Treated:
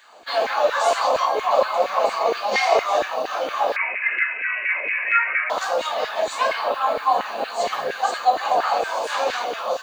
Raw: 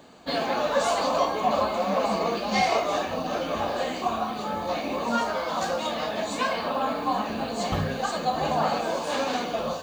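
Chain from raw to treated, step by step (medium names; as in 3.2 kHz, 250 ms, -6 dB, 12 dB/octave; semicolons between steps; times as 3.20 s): 3.76–5.50 s: frequency inversion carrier 2.8 kHz; LFO high-pass saw down 4.3 Hz 410–1900 Hz; trim +2 dB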